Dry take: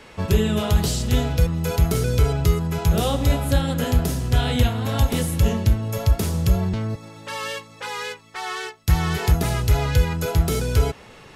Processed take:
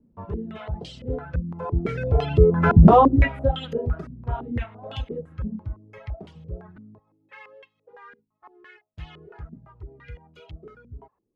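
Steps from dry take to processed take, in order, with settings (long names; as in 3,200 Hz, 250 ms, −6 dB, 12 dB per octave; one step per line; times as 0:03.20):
source passing by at 0:02.82, 11 m/s, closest 1.6 metres
reverb reduction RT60 1.7 s
boost into a limiter +15.5 dB
low-pass on a step sequencer 5.9 Hz 230–3,000 Hz
level −4 dB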